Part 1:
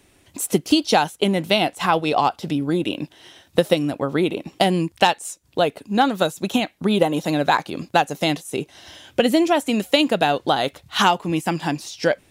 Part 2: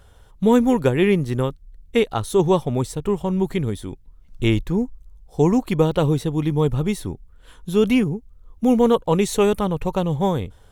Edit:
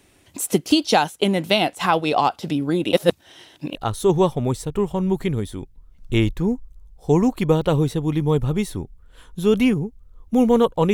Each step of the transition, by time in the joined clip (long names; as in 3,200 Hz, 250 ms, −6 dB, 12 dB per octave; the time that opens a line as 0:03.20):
part 1
0:02.93–0:03.75: reverse
0:03.75: continue with part 2 from 0:02.05